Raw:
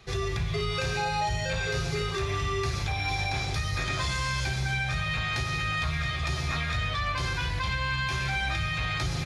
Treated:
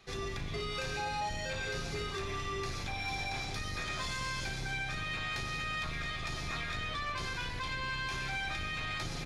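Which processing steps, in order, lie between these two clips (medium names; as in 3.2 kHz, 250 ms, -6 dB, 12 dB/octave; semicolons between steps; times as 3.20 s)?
octave divider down 2 oct, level +3 dB; bass shelf 180 Hz -10 dB; saturation -23.5 dBFS, distortion -20 dB; trim -5 dB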